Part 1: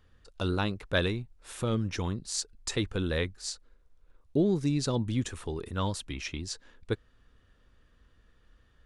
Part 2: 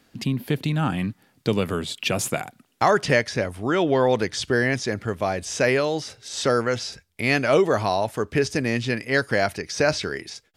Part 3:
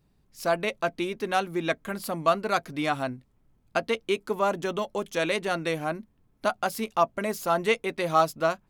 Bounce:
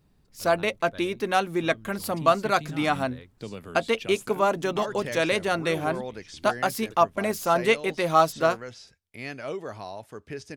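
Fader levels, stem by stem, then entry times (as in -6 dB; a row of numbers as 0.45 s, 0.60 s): -18.0 dB, -15.5 dB, +2.5 dB; 0.00 s, 1.95 s, 0.00 s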